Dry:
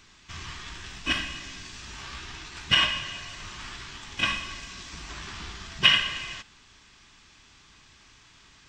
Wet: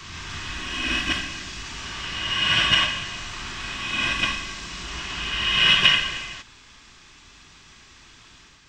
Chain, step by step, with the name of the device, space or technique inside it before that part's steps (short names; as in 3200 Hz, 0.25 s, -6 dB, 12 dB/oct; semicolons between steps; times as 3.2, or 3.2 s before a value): reverse reverb (reverse; reverb RT60 1.9 s, pre-delay 0.113 s, DRR -2.5 dB; reverse); gain +1.5 dB